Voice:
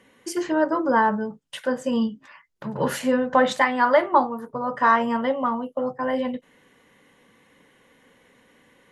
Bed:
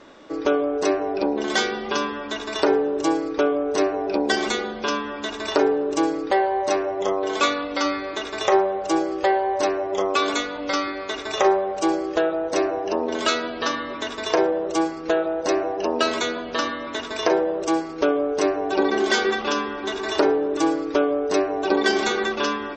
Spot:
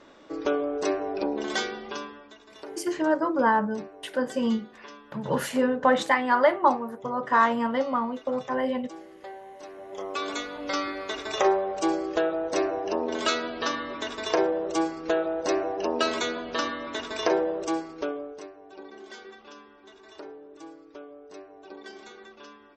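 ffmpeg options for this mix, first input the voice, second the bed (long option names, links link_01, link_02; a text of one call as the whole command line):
ffmpeg -i stem1.wav -i stem2.wav -filter_complex "[0:a]adelay=2500,volume=-2.5dB[link_01];[1:a]volume=12.5dB,afade=type=out:start_time=1.44:duration=0.91:silence=0.149624,afade=type=in:start_time=9.68:duration=1.23:silence=0.125893,afade=type=out:start_time=17.45:duration=1.03:silence=0.1[link_02];[link_01][link_02]amix=inputs=2:normalize=0" out.wav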